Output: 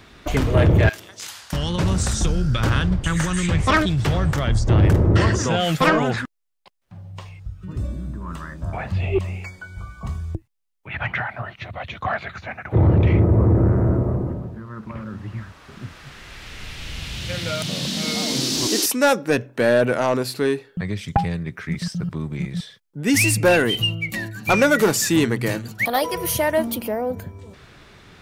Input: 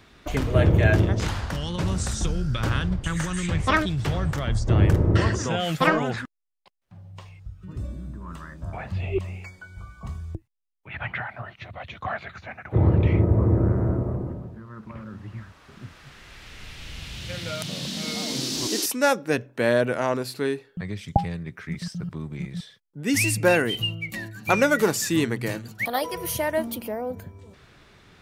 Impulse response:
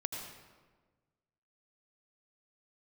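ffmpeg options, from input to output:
-filter_complex "[0:a]asoftclip=type=tanh:threshold=-14.5dB,asettb=1/sr,asplit=3[a][b][c];[a]atrim=end=0.894[d];[b]atrim=start=0.89:end=1.53,asetpts=PTS-STARTPTS,afade=t=in:d=0.004:c=qsin,afade=t=out:st=0.636:d=0.004:c=qsin,aderivative[e];[c]atrim=start=1.526[f];[d][e]acrossfade=d=0.004:c1=hsin:c2=qsin[g];[g][f]acrossfade=d=0.004:c1=qsin:c2=hsin,volume=6dB"

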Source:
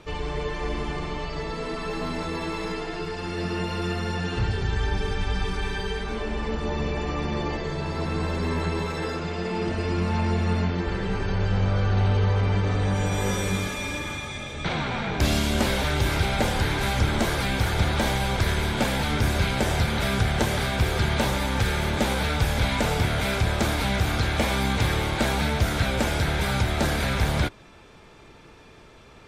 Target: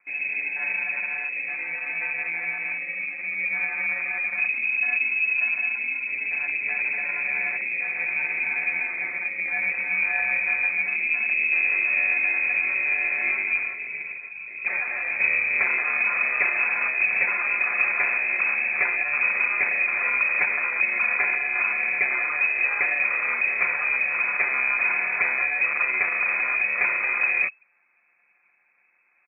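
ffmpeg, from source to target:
-af "aemphasis=mode=reproduction:type=75fm,afwtdn=0.0355,aecho=1:1:5.7:0.52,acrusher=samples=16:mix=1:aa=0.000001,lowpass=f=2.2k:t=q:w=0.5098,lowpass=f=2.2k:t=q:w=0.6013,lowpass=f=2.2k:t=q:w=0.9,lowpass=f=2.2k:t=q:w=2.563,afreqshift=-2600"

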